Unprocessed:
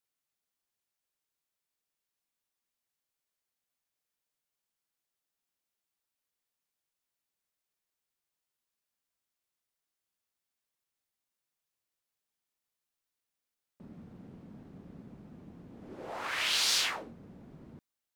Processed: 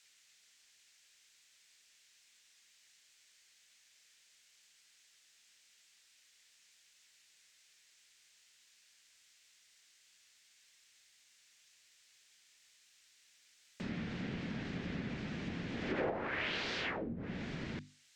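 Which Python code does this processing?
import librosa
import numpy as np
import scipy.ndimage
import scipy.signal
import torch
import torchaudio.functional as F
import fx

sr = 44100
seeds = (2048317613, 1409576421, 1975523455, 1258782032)

y = fx.hum_notches(x, sr, base_hz=50, count=7)
y = fx.env_lowpass_down(y, sr, base_hz=390.0, full_db=-38.5)
y = fx.band_shelf(y, sr, hz=3600.0, db=16.0, octaves=2.7)
y = y * 10.0 ** (10.0 / 20.0)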